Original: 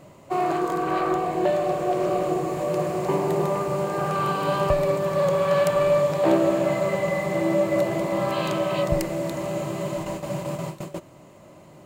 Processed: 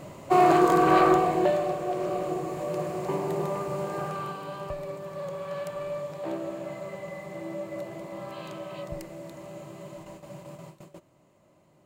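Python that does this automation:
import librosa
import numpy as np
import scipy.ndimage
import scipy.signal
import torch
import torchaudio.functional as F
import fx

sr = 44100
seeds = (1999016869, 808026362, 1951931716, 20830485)

y = fx.gain(x, sr, db=fx.line((1.02, 5.0), (1.8, -6.0), (3.98, -6.0), (4.49, -14.0)))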